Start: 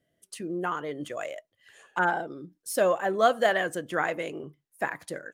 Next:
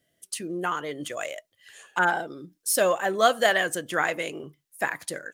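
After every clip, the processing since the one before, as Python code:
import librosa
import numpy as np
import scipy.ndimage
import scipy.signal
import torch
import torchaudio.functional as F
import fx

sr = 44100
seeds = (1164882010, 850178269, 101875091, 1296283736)

y = fx.high_shelf(x, sr, hz=2100.0, db=10.5)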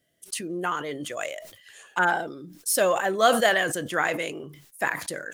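y = fx.sustainer(x, sr, db_per_s=78.0)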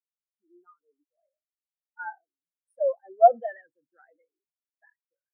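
y = fx.spectral_expand(x, sr, expansion=4.0)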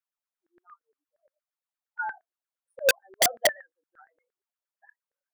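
y = fx.filter_lfo_highpass(x, sr, shape='saw_down', hz=8.6, low_hz=480.0, high_hz=1700.0, q=5.5)
y = (np.mod(10.0 ** (10.5 / 20.0) * y + 1.0, 2.0) - 1.0) / 10.0 ** (10.5 / 20.0)
y = F.gain(torch.from_numpy(y), -2.5).numpy()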